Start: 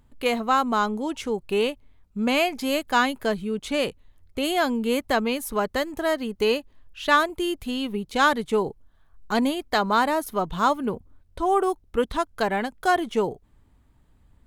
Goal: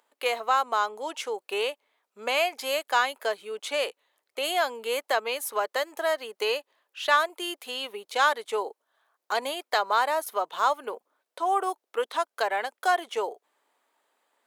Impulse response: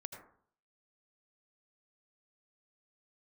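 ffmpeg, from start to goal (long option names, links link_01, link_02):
-filter_complex "[0:a]highpass=frequency=490:width=0.5412,highpass=frequency=490:width=1.3066,asplit=2[link_01][link_02];[link_02]acompressor=threshold=-28dB:ratio=6,volume=-2dB[link_03];[link_01][link_03]amix=inputs=2:normalize=0,volume=-4dB"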